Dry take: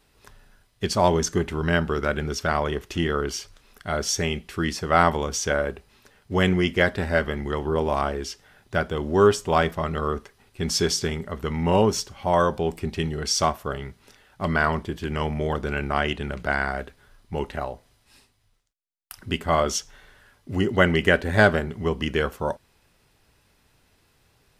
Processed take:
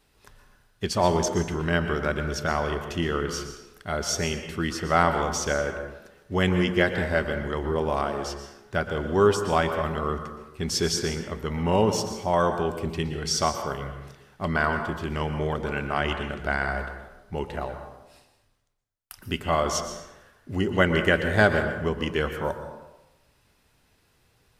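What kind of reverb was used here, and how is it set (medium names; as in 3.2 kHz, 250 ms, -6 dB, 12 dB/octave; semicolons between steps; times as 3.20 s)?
plate-style reverb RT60 1 s, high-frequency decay 0.6×, pre-delay 105 ms, DRR 7 dB; trim -2.5 dB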